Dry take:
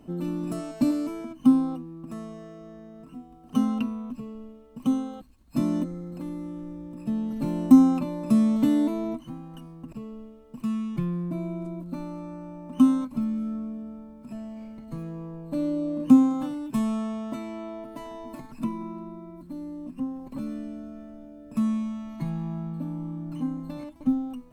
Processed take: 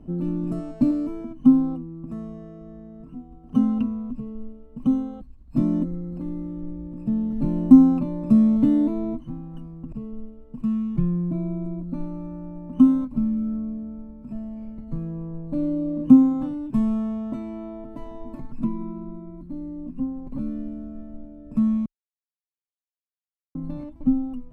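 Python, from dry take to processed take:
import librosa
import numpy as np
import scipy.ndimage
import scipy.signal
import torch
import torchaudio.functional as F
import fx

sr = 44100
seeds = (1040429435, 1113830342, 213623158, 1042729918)

y = fx.edit(x, sr, fx.silence(start_s=21.86, length_s=1.69), tone=tone)
y = fx.tilt_eq(y, sr, slope=-3.5)
y = F.gain(torch.from_numpy(y), -3.5).numpy()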